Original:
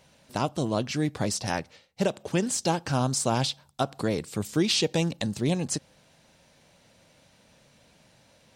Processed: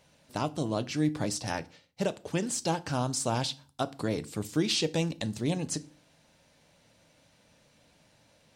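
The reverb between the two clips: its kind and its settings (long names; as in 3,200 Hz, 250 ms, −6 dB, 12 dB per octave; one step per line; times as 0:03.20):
feedback delay network reverb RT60 0.34 s, low-frequency decay 1.5×, high-frequency decay 0.95×, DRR 12.5 dB
level −4 dB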